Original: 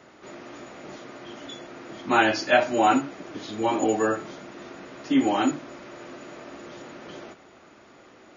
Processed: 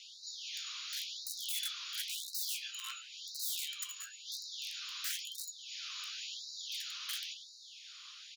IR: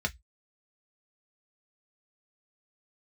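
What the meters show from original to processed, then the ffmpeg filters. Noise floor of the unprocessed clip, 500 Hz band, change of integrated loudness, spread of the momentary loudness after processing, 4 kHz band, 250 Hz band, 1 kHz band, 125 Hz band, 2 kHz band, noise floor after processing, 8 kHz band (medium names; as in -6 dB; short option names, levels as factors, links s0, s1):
-52 dBFS, under -40 dB, -16.0 dB, 9 LU, 0.0 dB, under -40 dB, -32.0 dB, under -40 dB, -18.0 dB, -54 dBFS, no reading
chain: -filter_complex "[0:a]acrossover=split=230 5600:gain=0.251 1 0.141[s0][s1][s2];[s0][s1][s2]amix=inputs=3:normalize=0,acompressor=threshold=0.02:ratio=12,equalizer=f=97:t=o:w=0.3:g=-12.5,asplit=2[s3][s4];[s4]adelay=138,lowpass=f=4700:p=1,volume=0.355,asplit=2[s5][s6];[s6]adelay=138,lowpass=f=4700:p=1,volume=0.17,asplit=2[s7][s8];[s8]adelay=138,lowpass=f=4700:p=1,volume=0.17[s9];[s5][s7][s9]amix=inputs=3:normalize=0[s10];[s3][s10]amix=inputs=2:normalize=0,aexciter=amount=12.8:drive=8.1:freq=3000,acrusher=bits=8:mix=0:aa=0.000001,asoftclip=type=tanh:threshold=0.133,adynamicsmooth=sensitivity=1:basefreq=5700,aeval=exprs='(mod(18.8*val(0)+1,2)-1)/18.8':c=same,flanger=delay=9.9:depth=8.6:regen=-54:speed=0.57:shape=triangular,afftfilt=real='re*gte(b*sr/1024,980*pow(3800/980,0.5+0.5*sin(2*PI*0.96*pts/sr)))':imag='im*gte(b*sr/1024,980*pow(3800/980,0.5+0.5*sin(2*PI*0.96*pts/sr)))':win_size=1024:overlap=0.75,volume=0.841"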